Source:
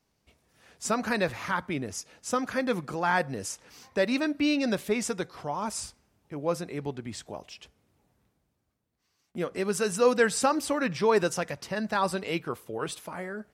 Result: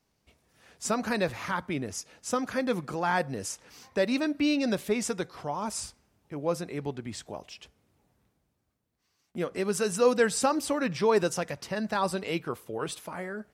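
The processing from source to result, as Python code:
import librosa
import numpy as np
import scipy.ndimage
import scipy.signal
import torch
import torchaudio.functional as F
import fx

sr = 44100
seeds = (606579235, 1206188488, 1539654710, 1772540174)

y = fx.dynamic_eq(x, sr, hz=1700.0, q=0.86, threshold_db=-35.0, ratio=4.0, max_db=-3)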